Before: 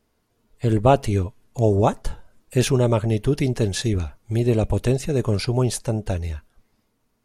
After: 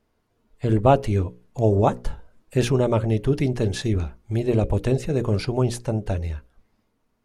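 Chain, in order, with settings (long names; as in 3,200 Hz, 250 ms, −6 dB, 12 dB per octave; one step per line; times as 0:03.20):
high-shelf EQ 4,200 Hz −9 dB
mains-hum notches 60/120/180/240/300/360/420/480/540 Hz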